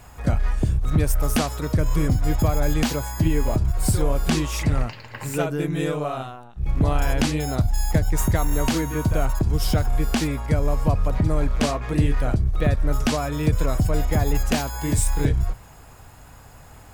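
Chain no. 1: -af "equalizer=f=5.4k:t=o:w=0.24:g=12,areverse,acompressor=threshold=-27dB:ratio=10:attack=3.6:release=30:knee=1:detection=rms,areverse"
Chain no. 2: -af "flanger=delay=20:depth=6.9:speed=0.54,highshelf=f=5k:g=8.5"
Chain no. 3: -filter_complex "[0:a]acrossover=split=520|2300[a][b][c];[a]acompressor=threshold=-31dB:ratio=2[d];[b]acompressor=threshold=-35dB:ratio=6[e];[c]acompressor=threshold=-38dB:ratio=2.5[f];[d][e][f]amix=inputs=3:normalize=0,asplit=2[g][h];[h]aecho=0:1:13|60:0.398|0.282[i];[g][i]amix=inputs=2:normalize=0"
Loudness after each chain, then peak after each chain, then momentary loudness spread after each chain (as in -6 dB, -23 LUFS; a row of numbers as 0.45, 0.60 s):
-32.0, -25.5, -29.0 LUFS; -18.0, -7.5, -13.0 dBFS; 5, 4, 7 LU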